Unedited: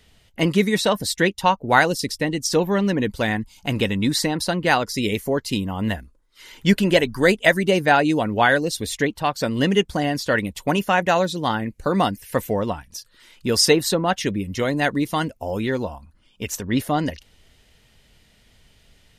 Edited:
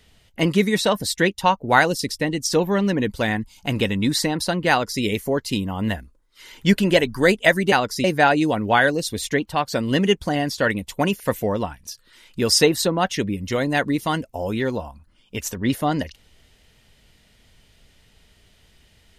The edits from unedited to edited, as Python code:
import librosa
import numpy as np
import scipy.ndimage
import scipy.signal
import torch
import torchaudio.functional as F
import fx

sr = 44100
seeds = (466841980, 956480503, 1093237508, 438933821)

y = fx.edit(x, sr, fx.duplicate(start_s=4.7, length_s=0.32, to_s=7.72),
    fx.cut(start_s=10.88, length_s=1.39), tone=tone)